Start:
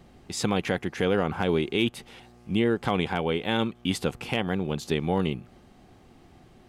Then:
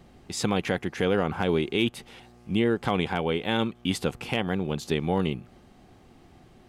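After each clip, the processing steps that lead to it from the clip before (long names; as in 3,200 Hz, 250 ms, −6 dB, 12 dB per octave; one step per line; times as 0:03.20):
no processing that can be heard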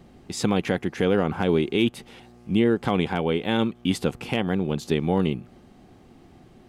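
parametric band 250 Hz +4.5 dB 2.1 octaves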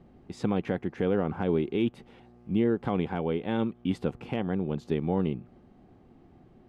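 low-pass filter 1,200 Hz 6 dB per octave
level −4.5 dB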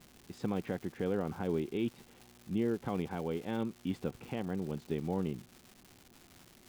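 surface crackle 380 per second −37 dBFS
level −7 dB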